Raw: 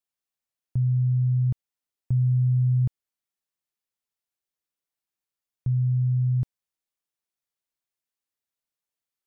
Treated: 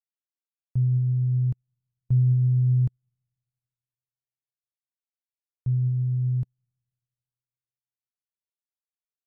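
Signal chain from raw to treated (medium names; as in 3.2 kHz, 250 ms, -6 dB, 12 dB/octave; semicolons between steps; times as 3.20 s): algorithmic reverb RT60 2.4 s, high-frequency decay 0.75×, pre-delay 55 ms, DRR 17 dB; upward expansion 2.5:1, over -44 dBFS; trim +3 dB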